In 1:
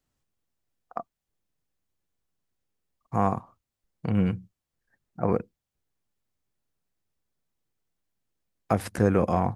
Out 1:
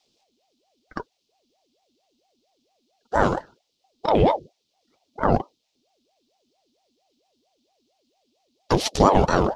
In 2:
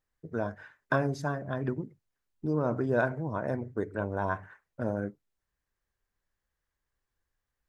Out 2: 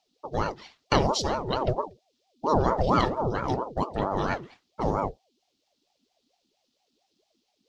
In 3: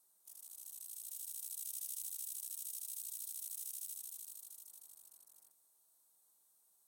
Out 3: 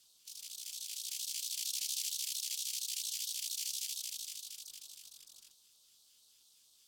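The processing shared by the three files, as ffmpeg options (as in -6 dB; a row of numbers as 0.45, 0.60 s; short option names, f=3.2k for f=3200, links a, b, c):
-filter_complex "[0:a]tiltshelf=f=1.1k:g=9,flanger=delay=1.8:depth=6.5:regen=-47:speed=1.7:shape=sinusoidal,highshelf=f=2.7k:g=11,acrossover=split=4100[a][b];[a]aexciter=amount=15.8:drive=9.9:freq=3.2k[c];[c][b]amix=inputs=2:normalize=0,aeval=exprs='val(0)*sin(2*PI*510*n/s+510*0.55/4.4*sin(2*PI*4.4*n/s))':c=same,volume=5dB"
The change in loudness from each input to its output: +5.5, +5.0, +6.5 LU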